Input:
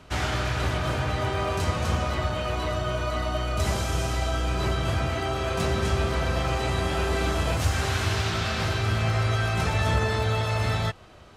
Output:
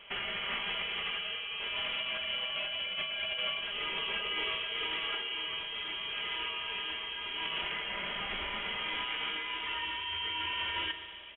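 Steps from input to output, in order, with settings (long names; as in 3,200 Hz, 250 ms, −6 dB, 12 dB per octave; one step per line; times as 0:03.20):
high-pass filter 300 Hz 24 dB per octave
comb filter 5 ms, depth 41%
compressor whose output falls as the input rises −33 dBFS, ratio −1
feedback delay network reverb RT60 1.9 s, low-frequency decay 1.45×, high-frequency decay 0.85×, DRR 6 dB
voice inversion scrambler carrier 3,600 Hz
level −4 dB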